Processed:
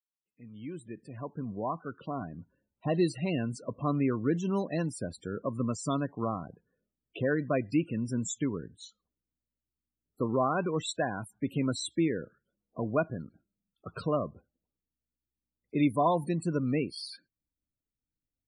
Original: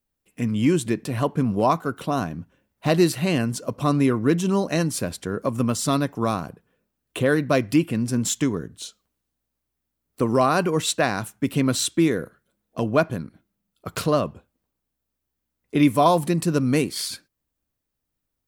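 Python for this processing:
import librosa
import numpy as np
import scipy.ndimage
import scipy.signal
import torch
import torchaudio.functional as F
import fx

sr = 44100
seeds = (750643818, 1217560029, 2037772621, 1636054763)

y = fx.fade_in_head(x, sr, length_s=3.05)
y = fx.spec_topn(y, sr, count=32)
y = y * librosa.db_to_amplitude(-8.5)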